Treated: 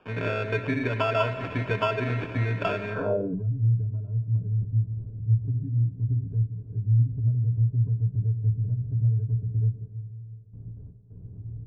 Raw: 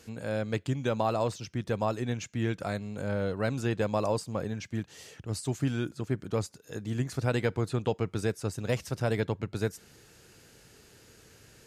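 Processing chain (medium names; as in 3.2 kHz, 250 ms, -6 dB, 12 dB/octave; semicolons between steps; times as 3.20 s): jump at every zero crossing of -41.5 dBFS; gate with hold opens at -40 dBFS; de-hum 64.35 Hz, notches 6; low-pass that closes with the level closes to 830 Hz, closed at -23.5 dBFS; bass shelf 80 Hz -8.5 dB; compression, threshold -31 dBFS, peak gain reduction 8 dB; rippled EQ curve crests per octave 1.6, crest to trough 17 dB; sample-and-hold 22×; reverberation RT60 3.4 s, pre-delay 56 ms, DRR 9.5 dB; low-pass sweep 2.3 kHz -> 110 Hz, 2.89–3.47 s; trim +4.5 dB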